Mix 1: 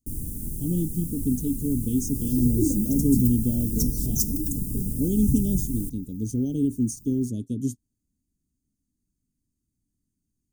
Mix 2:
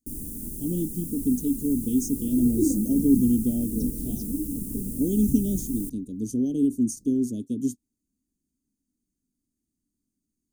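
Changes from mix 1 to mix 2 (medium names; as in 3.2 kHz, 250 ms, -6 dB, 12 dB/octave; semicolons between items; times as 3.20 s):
second sound: add distance through air 310 m; master: add resonant low shelf 180 Hz -7 dB, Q 1.5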